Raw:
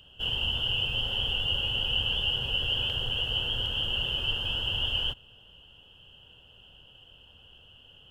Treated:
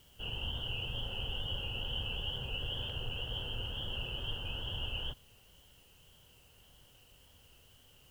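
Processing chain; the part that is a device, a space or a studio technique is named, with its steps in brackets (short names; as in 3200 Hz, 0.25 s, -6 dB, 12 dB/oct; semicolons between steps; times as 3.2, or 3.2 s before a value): cassette deck with a dirty head (tape spacing loss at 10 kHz 26 dB; wow and flutter; white noise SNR 27 dB); gain -4 dB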